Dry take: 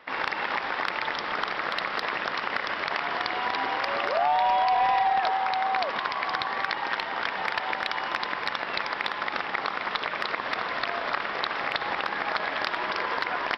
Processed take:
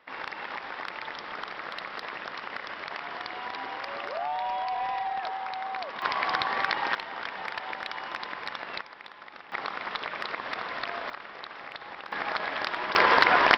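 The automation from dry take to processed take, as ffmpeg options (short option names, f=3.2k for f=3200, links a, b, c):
-af "asetnsamples=n=441:p=0,asendcmd='6.02 volume volume 1dB;6.95 volume volume -6.5dB;8.81 volume volume -16.5dB;9.52 volume volume -4.5dB;11.1 volume volume -12.5dB;12.12 volume volume -2.5dB;12.95 volume volume 9dB',volume=-8dB"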